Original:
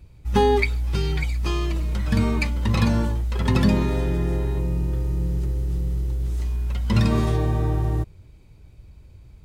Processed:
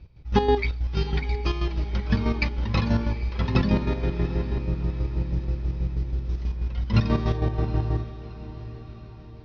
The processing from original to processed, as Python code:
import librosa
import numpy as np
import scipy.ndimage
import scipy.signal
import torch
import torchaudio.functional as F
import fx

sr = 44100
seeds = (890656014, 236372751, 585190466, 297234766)

y = scipy.signal.sosfilt(scipy.signal.butter(12, 5800.0, 'lowpass', fs=sr, output='sos'), x)
y = fx.chopper(y, sr, hz=6.2, depth_pct=60, duty_pct=40)
y = fx.echo_diffused(y, sr, ms=771, feedback_pct=55, wet_db=-14.0)